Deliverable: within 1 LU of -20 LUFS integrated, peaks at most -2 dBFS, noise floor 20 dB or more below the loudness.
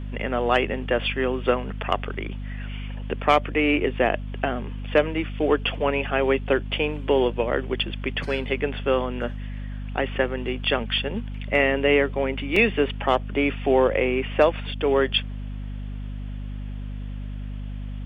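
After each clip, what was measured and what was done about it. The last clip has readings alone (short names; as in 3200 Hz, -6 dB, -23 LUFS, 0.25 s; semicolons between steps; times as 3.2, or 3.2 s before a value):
dropouts 1; longest dropout 3.9 ms; hum 50 Hz; harmonics up to 250 Hz; hum level -29 dBFS; loudness -23.5 LUFS; peak -6.0 dBFS; loudness target -20.0 LUFS
-> interpolate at 12.56, 3.9 ms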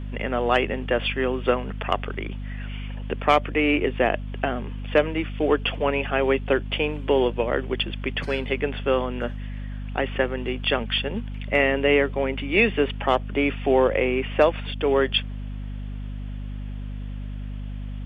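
dropouts 0; hum 50 Hz; harmonics up to 250 Hz; hum level -29 dBFS
-> de-hum 50 Hz, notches 5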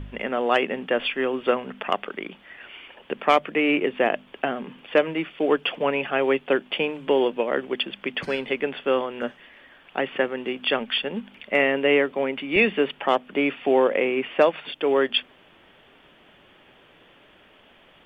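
hum none; loudness -24.0 LUFS; peak -6.5 dBFS; loudness target -20.0 LUFS
-> gain +4 dB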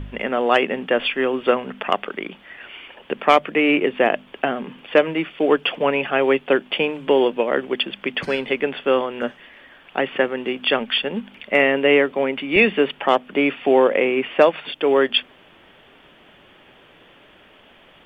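loudness -20.0 LUFS; peak -2.5 dBFS; noise floor -51 dBFS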